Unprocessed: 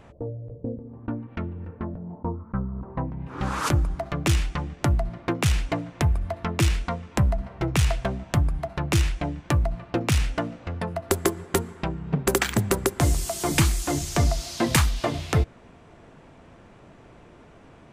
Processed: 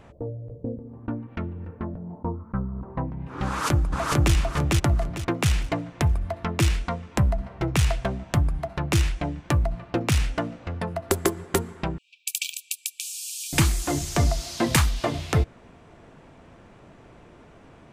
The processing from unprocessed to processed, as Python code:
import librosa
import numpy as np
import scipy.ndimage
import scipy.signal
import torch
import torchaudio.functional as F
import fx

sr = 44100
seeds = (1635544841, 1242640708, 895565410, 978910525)

y = fx.echo_throw(x, sr, start_s=3.47, length_s=0.87, ms=450, feedback_pct=30, wet_db=-0.5)
y = fx.brickwall_highpass(y, sr, low_hz=2300.0, at=(11.98, 13.53))